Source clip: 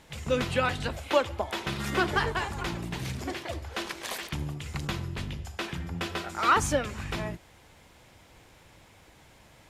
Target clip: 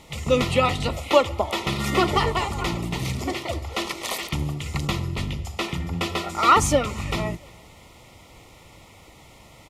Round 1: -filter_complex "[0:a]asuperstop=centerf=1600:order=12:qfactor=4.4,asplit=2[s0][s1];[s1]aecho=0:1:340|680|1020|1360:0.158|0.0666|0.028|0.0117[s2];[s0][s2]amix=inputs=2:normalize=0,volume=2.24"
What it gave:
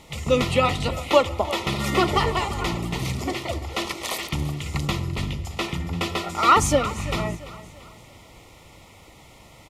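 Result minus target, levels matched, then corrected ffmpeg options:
echo-to-direct +10 dB
-filter_complex "[0:a]asuperstop=centerf=1600:order=12:qfactor=4.4,asplit=2[s0][s1];[s1]aecho=0:1:340|680:0.0501|0.021[s2];[s0][s2]amix=inputs=2:normalize=0,volume=2.24"

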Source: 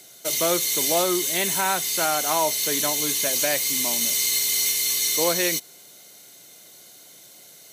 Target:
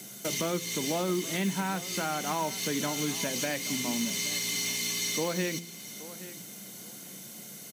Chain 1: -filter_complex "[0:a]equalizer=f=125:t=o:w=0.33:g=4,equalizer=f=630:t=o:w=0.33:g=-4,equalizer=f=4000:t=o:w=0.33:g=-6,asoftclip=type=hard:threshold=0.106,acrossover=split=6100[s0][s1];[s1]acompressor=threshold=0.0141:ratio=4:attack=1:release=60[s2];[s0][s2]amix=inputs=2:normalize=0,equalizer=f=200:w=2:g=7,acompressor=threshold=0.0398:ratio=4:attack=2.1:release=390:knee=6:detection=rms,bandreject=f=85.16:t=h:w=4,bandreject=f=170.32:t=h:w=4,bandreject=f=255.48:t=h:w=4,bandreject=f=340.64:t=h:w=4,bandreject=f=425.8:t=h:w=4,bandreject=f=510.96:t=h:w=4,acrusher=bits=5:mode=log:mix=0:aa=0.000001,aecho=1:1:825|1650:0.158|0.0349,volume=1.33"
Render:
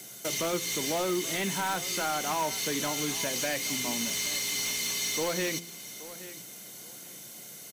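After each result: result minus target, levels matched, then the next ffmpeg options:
hard clipper: distortion +18 dB; 250 Hz band -4.0 dB
-filter_complex "[0:a]equalizer=f=125:t=o:w=0.33:g=4,equalizer=f=630:t=o:w=0.33:g=-4,equalizer=f=4000:t=o:w=0.33:g=-6,asoftclip=type=hard:threshold=0.224,acrossover=split=6100[s0][s1];[s1]acompressor=threshold=0.0141:ratio=4:attack=1:release=60[s2];[s0][s2]amix=inputs=2:normalize=0,equalizer=f=200:w=2:g=7,acompressor=threshold=0.0398:ratio=4:attack=2.1:release=390:knee=6:detection=rms,bandreject=f=85.16:t=h:w=4,bandreject=f=170.32:t=h:w=4,bandreject=f=255.48:t=h:w=4,bandreject=f=340.64:t=h:w=4,bandreject=f=425.8:t=h:w=4,bandreject=f=510.96:t=h:w=4,acrusher=bits=5:mode=log:mix=0:aa=0.000001,aecho=1:1:825|1650:0.158|0.0349,volume=1.33"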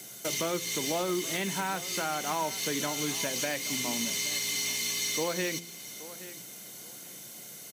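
250 Hz band -3.5 dB
-filter_complex "[0:a]equalizer=f=125:t=o:w=0.33:g=4,equalizer=f=630:t=o:w=0.33:g=-4,equalizer=f=4000:t=o:w=0.33:g=-6,asoftclip=type=hard:threshold=0.224,acrossover=split=6100[s0][s1];[s1]acompressor=threshold=0.0141:ratio=4:attack=1:release=60[s2];[s0][s2]amix=inputs=2:normalize=0,equalizer=f=200:w=2:g=16.5,acompressor=threshold=0.0398:ratio=4:attack=2.1:release=390:knee=6:detection=rms,bandreject=f=85.16:t=h:w=4,bandreject=f=170.32:t=h:w=4,bandreject=f=255.48:t=h:w=4,bandreject=f=340.64:t=h:w=4,bandreject=f=425.8:t=h:w=4,bandreject=f=510.96:t=h:w=4,acrusher=bits=5:mode=log:mix=0:aa=0.000001,aecho=1:1:825|1650:0.158|0.0349,volume=1.33"

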